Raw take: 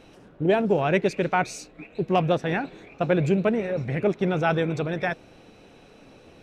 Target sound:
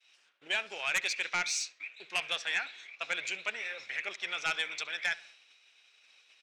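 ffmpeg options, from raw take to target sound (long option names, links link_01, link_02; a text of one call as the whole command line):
ffmpeg -i in.wav -filter_complex "[0:a]agate=range=-33dB:threshold=-43dB:ratio=3:detection=peak,asuperpass=centerf=4400:order=4:qfactor=0.75,asetrate=42845,aresample=44100,atempo=1.0293,aeval=exprs='0.133*sin(PI/2*2.51*val(0)/0.133)':channel_layout=same,asplit=2[link_01][link_02];[link_02]adelay=67,lowpass=frequency=3600:poles=1,volume=-20dB,asplit=2[link_03][link_04];[link_04]adelay=67,lowpass=frequency=3600:poles=1,volume=0.45,asplit=2[link_05][link_06];[link_06]adelay=67,lowpass=frequency=3600:poles=1,volume=0.45[link_07];[link_01][link_03][link_05][link_07]amix=inputs=4:normalize=0,volume=-5dB" out.wav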